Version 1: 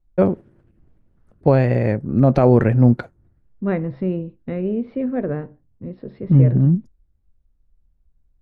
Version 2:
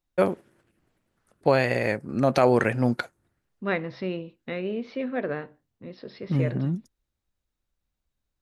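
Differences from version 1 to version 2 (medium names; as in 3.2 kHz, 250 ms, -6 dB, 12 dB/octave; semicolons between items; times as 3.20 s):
second voice: remove distance through air 160 m; master: add tilt EQ +4.5 dB/octave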